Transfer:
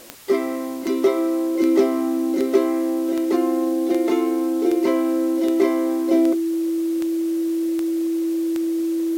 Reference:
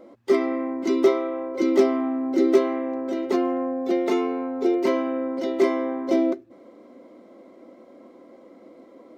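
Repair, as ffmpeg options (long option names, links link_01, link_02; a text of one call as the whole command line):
ffmpeg -i in.wav -af "adeclick=threshold=4,bandreject=frequency=330:width=30,afwtdn=0.0063" out.wav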